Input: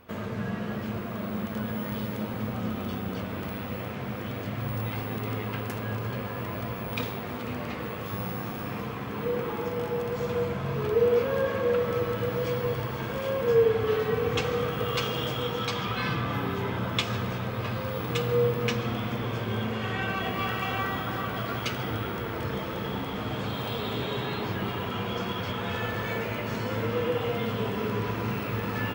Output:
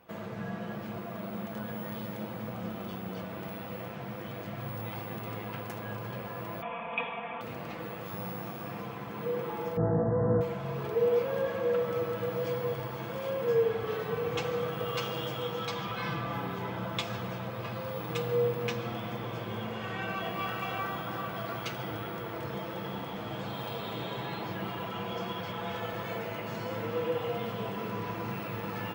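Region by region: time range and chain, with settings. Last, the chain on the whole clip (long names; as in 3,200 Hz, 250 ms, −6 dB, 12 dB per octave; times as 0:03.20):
0:06.62–0:07.41: Chebyshev low-pass with heavy ripple 3,500 Hz, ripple 9 dB + parametric band 2,200 Hz +9 dB 2 octaves + comb filter 4.3 ms, depth 97%
0:09.77–0:10.41: linear-phase brick-wall low-pass 2,000 Hz + spectral tilt −4 dB per octave + flutter between parallel walls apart 3.1 metres, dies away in 0.37 s
whole clip: high-pass filter 70 Hz; parametric band 750 Hz +5.5 dB 0.67 octaves; comb filter 6 ms, depth 46%; level −7 dB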